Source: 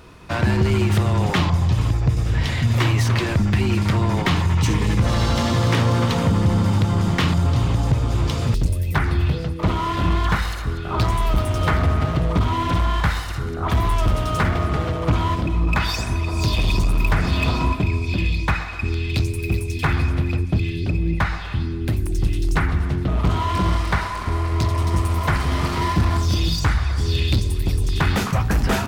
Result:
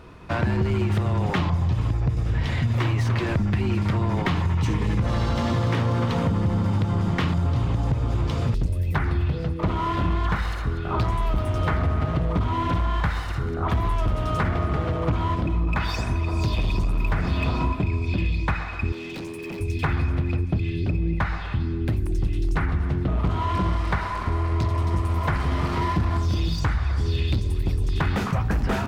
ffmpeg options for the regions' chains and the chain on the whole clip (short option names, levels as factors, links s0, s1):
-filter_complex "[0:a]asettb=1/sr,asplit=3[s0][s1][s2];[s0]atrim=end=18.924[s3];[s1]atrim=start=18.92:end=19.6,asetpts=PTS-STARTPTS,afade=t=in:d=0.004:c=qsin,afade=t=out:st=0.676:d=0.004:c=qsin,highpass=f=170:w=0.5412,highpass=f=170:w=1.3066,volume=31.6,asoftclip=hard,volume=0.0316[s4];[s2]atrim=start=19.596[s5];[s3][s4]acrossfade=d=0.004:c1=hsin:c2=qsin[s6];[s6][s5]acrossfade=d=0.004:c1=qsin:c2=hsin,highshelf=f=3800:g=-11,acompressor=threshold=0.1:ratio=3"